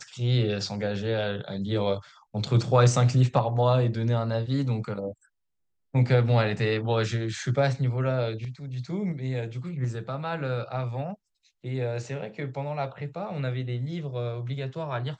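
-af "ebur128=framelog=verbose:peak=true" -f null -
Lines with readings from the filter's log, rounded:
Integrated loudness:
  I:         -27.4 LUFS
  Threshold: -37.6 LUFS
Loudness range:
  LRA:         8.4 LU
  Threshold: -47.4 LUFS
  LRA low:   -32.8 LUFS
  LRA high:  -24.4 LUFS
True peak:
  Peak:       -7.5 dBFS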